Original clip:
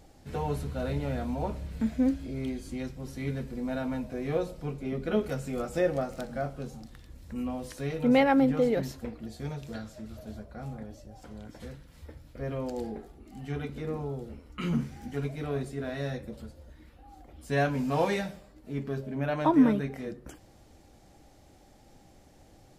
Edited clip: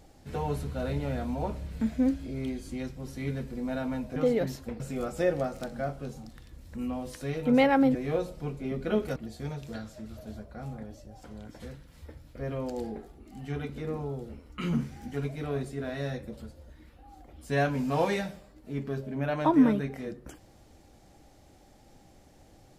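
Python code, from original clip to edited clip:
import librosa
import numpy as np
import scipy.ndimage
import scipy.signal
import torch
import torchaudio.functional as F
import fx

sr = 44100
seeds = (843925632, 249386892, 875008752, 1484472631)

y = fx.edit(x, sr, fx.swap(start_s=4.16, length_s=1.21, other_s=8.52, other_length_s=0.64), tone=tone)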